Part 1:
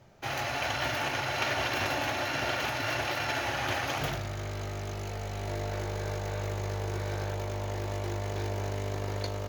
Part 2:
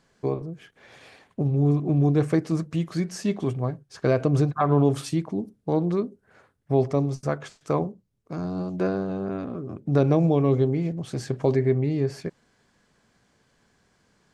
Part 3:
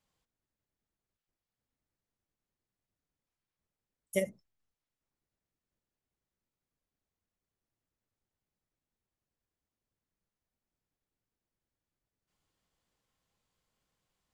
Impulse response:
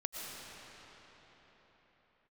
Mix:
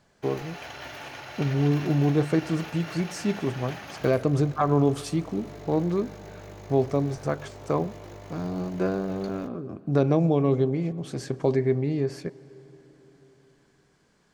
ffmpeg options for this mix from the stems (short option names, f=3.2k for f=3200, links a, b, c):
-filter_complex "[0:a]volume=-9.5dB,asplit=2[a][b];[b]volume=-23dB[c];[1:a]volume=-1.5dB,asplit=2[d][e];[e]volume=-20.5dB[f];[2:a]volume=-16.5dB[g];[3:a]atrim=start_sample=2205[h];[c][f]amix=inputs=2:normalize=0[i];[i][h]afir=irnorm=-1:irlink=0[j];[a][d][g][j]amix=inputs=4:normalize=0,equalizer=f=110:t=o:w=0.54:g=-4.5"